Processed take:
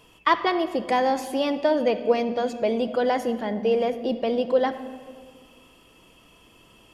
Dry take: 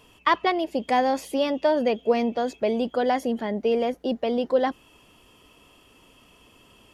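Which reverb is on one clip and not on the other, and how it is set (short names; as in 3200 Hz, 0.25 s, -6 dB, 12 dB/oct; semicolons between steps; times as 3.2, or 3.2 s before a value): shoebox room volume 2200 m³, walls mixed, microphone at 0.69 m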